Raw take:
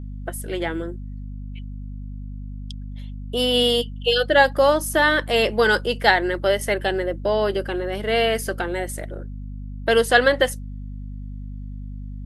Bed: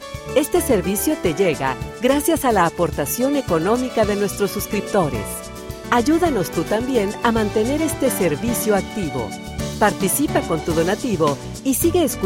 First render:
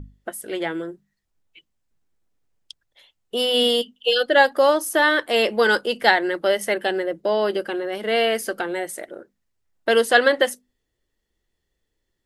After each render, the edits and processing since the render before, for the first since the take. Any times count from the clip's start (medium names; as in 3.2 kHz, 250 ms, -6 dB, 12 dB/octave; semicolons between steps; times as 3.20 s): hum notches 50/100/150/200/250 Hz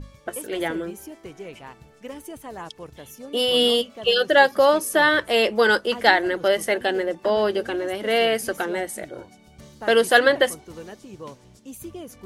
add bed -20.5 dB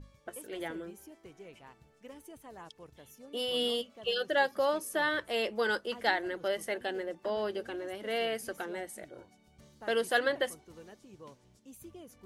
trim -12.5 dB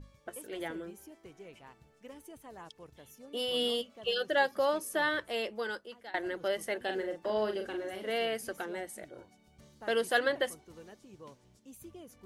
5.08–6.14 s: fade out, to -23.5 dB; 6.82–8.10 s: doubling 42 ms -6 dB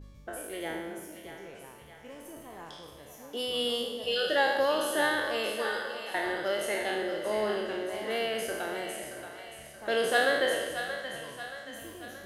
spectral sustain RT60 1.10 s; two-band feedback delay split 570 Hz, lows 159 ms, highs 627 ms, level -9 dB